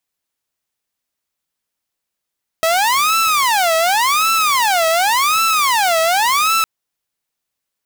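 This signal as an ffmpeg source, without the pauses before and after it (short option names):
-f lavfi -i "aevalsrc='0.316*(2*mod((988.5*t-341.5/(2*PI*0.89)*sin(2*PI*0.89*t)),1)-1)':d=4.01:s=44100"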